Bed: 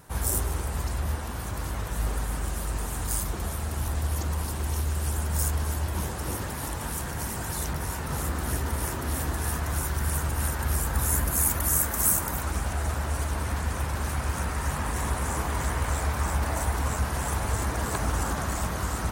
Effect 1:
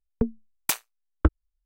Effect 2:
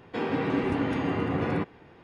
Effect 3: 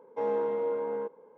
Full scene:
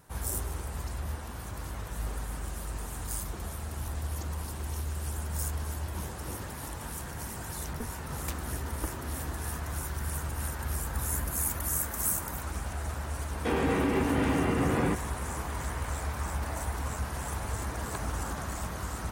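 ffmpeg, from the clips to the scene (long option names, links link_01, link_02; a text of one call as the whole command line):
ffmpeg -i bed.wav -i cue0.wav -i cue1.wav -filter_complex "[0:a]volume=-6.5dB[link_01];[2:a]alimiter=level_in=20dB:limit=-1dB:release=50:level=0:latency=1[link_02];[1:a]atrim=end=1.65,asetpts=PTS-STARTPTS,volume=-15dB,afade=type=in:duration=0.004:curve=hsin,afade=type=out:start_time=1.646:duration=0.004:curve=hsin,adelay=7590[link_03];[link_02]atrim=end=2.03,asetpts=PTS-STARTPTS,volume=-18dB,afade=type=in:duration=0.004:curve=hsin,afade=type=out:start_time=2.026:duration=0.004:curve=hsin,adelay=13310[link_04];[link_01][link_03][link_04]amix=inputs=3:normalize=0" out.wav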